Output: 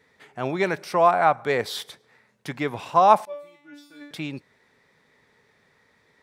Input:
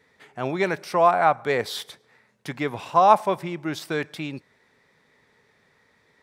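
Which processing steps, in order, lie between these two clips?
0:03.25–0:04.11: tuned comb filter 290 Hz, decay 0.59 s, mix 100%

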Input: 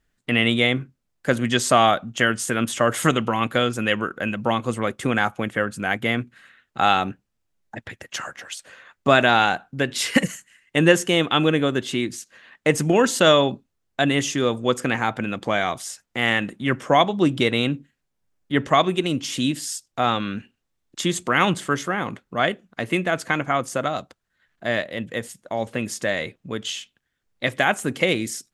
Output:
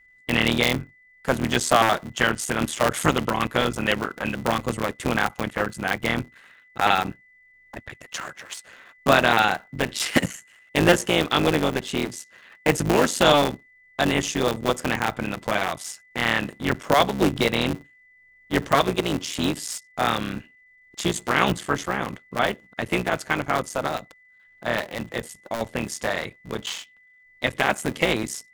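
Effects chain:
sub-harmonics by changed cycles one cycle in 3, muted
steady tone 2,000 Hz −53 dBFS

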